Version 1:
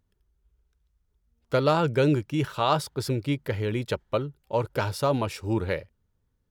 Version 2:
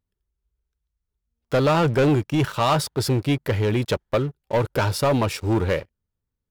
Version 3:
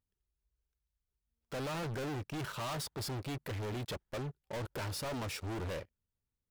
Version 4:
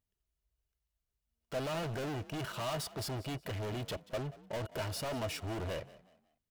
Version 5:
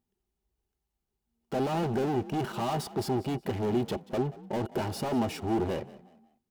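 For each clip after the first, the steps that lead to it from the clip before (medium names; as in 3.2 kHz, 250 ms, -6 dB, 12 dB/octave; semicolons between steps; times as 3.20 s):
waveshaping leveller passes 3; trim -3.5 dB
hard clipper -29.5 dBFS, distortion -6 dB; trim -7.5 dB
small resonant body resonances 650/2900 Hz, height 12 dB, ringing for 90 ms; frequency-shifting echo 183 ms, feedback 32%, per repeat +45 Hz, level -19 dB
small resonant body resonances 230/360/790 Hz, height 16 dB, ringing for 40 ms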